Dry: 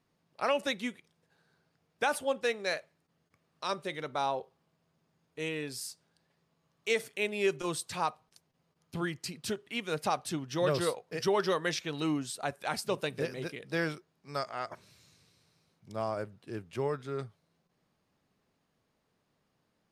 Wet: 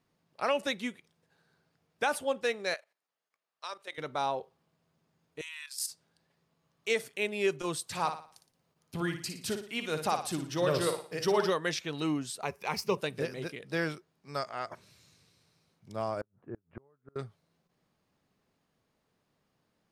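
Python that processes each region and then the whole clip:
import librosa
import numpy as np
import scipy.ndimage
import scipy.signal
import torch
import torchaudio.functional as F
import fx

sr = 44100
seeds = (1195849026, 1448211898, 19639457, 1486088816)

y = fx.chain(x, sr, fx.highpass(hz=660.0, slope=12),
    fx.level_steps(step_db=13), at=(2.74, 3.98))
y = fx.chain(y, sr, fx.brickwall_highpass(low_hz=900.0),
    fx.high_shelf(hz=2800.0, db=8.5),
    fx.level_steps(step_db=11), at=(5.41, 5.89))
y = fx.chain(y, sr, fx.high_shelf(hz=9900.0, db=5.0),
    fx.room_flutter(wall_m=9.9, rt60_s=0.43), at=(7.84, 11.5))
y = fx.chain(y, sr, fx.median_filter(points=3),
    fx.ripple_eq(per_octave=0.81, db=10), at=(12.42, 12.97))
y = fx.chain(y, sr, fx.lowpass(hz=1500.0, slope=24),
    fx.gate_flip(shuts_db=-30.0, range_db=-34), at=(16.21, 17.16))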